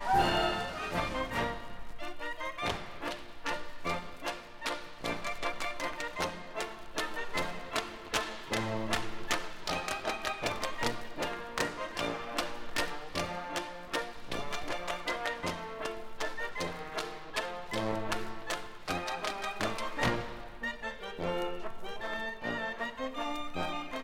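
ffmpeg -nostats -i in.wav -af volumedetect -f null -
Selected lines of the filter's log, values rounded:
mean_volume: -35.0 dB
max_volume: -14.9 dB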